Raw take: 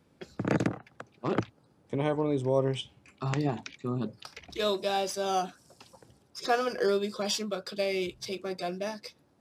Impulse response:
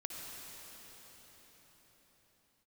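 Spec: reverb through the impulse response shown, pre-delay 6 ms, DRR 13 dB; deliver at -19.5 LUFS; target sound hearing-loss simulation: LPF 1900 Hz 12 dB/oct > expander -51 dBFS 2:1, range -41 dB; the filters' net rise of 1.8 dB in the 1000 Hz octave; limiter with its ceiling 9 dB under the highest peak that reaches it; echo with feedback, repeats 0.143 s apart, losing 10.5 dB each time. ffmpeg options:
-filter_complex "[0:a]equalizer=f=1k:t=o:g=3,alimiter=limit=-20.5dB:level=0:latency=1,aecho=1:1:143|286|429:0.299|0.0896|0.0269,asplit=2[a][b];[1:a]atrim=start_sample=2205,adelay=6[c];[b][c]afir=irnorm=-1:irlink=0,volume=-13dB[d];[a][d]amix=inputs=2:normalize=0,lowpass=1.9k,agate=range=-41dB:threshold=-51dB:ratio=2,volume=14dB"

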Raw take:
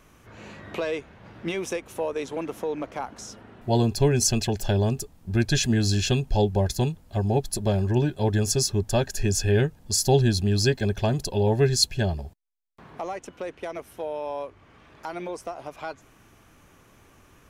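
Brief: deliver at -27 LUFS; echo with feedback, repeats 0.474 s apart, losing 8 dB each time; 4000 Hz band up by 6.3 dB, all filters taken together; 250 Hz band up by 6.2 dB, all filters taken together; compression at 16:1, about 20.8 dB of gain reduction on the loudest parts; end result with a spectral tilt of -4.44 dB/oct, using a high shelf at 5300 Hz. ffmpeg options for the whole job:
-af "equalizer=f=250:t=o:g=8,equalizer=f=4k:t=o:g=5,highshelf=f=5.3k:g=5.5,acompressor=threshold=-30dB:ratio=16,aecho=1:1:474|948|1422|1896|2370:0.398|0.159|0.0637|0.0255|0.0102,volume=8dB"

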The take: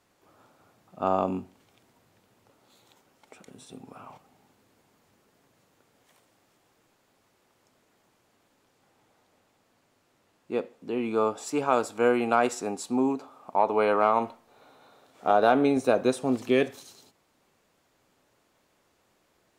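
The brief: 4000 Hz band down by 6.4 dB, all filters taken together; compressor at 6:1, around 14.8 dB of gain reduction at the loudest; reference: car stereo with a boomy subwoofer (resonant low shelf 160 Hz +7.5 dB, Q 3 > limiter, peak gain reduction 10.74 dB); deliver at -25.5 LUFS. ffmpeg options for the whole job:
-af "equalizer=f=4k:t=o:g=-8.5,acompressor=threshold=-33dB:ratio=6,lowshelf=f=160:t=q:w=3:g=7.5,volume=18dB,alimiter=limit=-13dB:level=0:latency=1"

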